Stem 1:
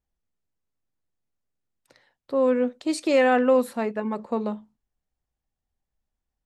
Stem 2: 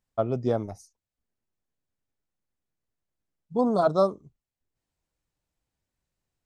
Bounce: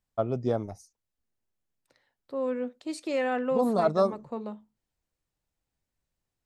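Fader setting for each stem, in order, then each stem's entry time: -9.0 dB, -2.0 dB; 0.00 s, 0.00 s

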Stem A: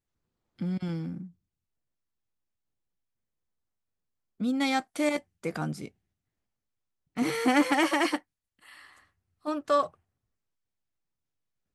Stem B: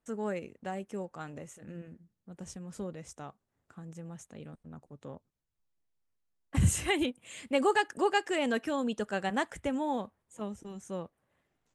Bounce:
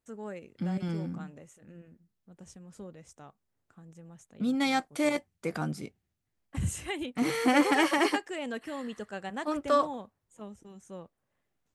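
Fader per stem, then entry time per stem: -0.5 dB, -6.0 dB; 0.00 s, 0.00 s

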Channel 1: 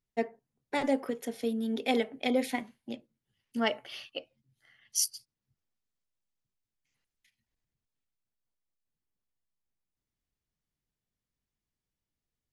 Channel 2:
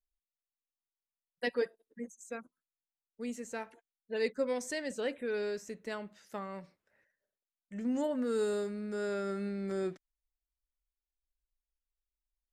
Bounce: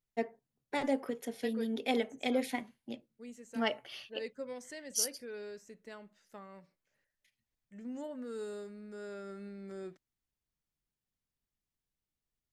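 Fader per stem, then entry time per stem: -3.5 dB, -9.5 dB; 0.00 s, 0.00 s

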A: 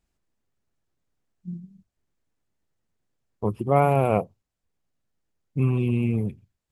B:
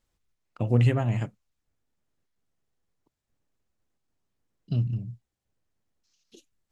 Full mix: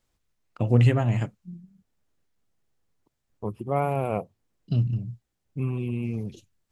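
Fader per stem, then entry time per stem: -6.0 dB, +2.5 dB; 0.00 s, 0.00 s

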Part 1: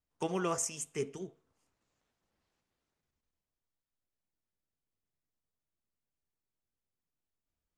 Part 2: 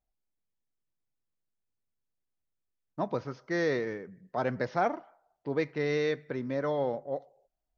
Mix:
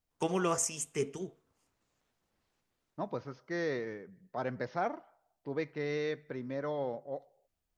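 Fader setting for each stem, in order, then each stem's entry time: +2.5 dB, -5.5 dB; 0.00 s, 0.00 s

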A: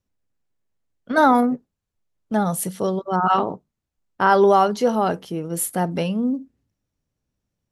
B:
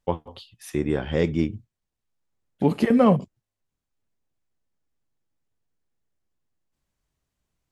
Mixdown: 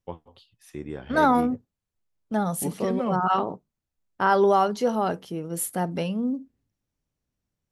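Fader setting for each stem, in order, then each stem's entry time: -4.5 dB, -11.0 dB; 0.00 s, 0.00 s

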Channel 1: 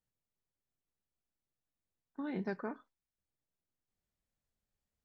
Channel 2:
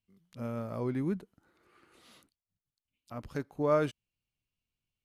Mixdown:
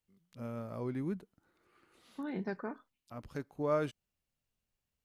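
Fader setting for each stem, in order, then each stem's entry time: 0.0 dB, -4.5 dB; 0.00 s, 0.00 s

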